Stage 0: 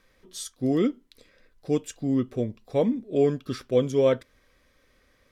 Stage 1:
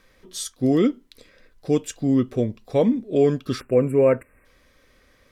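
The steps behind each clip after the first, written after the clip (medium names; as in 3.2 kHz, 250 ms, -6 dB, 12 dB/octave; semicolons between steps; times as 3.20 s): in parallel at -1 dB: peak limiter -17.5 dBFS, peak gain reduction 6.5 dB; on the sum: spectral selection erased 3.61–4.45 s, 2.8–7.4 kHz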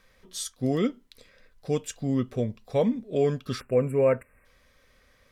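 peaking EQ 320 Hz -9 dB 0.52 oct; trim -3 dB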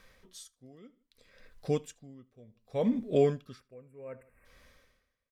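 feedback delay 79 ms, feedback 31%, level -22 dB; logarithmic tremolo 0.65 Hz, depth 31 dB; trim +2 dB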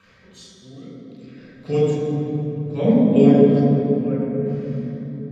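reverberation RT60 3.5 s, pre-delay 3 ms, DRR -7 dB; trim -2.5 dB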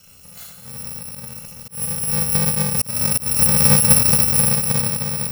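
bit-reversed sample order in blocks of 128 samples; slow attack 760 ms; trim +6.5 dB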